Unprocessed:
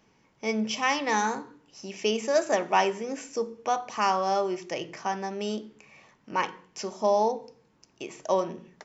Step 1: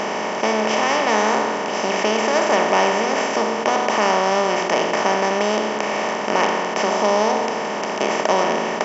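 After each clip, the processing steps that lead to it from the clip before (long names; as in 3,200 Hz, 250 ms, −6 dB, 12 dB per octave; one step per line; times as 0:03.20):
compressor on every frequency bin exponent 0.2
level −1 dB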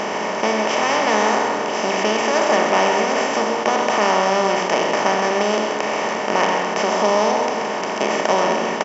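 single-tap delay 131 ms −7.5 dB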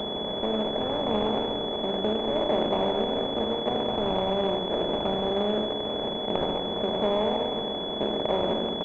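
running median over 41 samples
switching amplifier with a slow clock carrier 3,400 Hz
level −4 dB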